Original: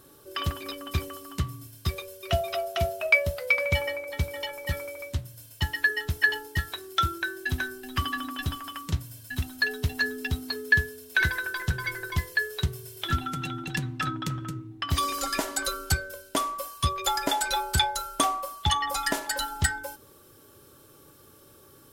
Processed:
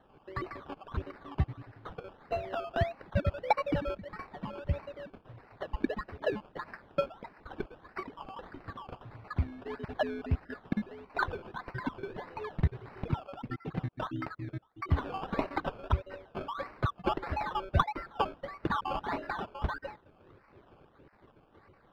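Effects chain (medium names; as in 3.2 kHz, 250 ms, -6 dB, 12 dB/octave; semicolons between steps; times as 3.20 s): random holes in the spectrogram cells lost 57%; 6.40–8.53 s: high-pass 1.2 kHz 24 dB/octave; decimation with a swept rate 18×, swing 60% 1.6 Hz; distance through air 380 m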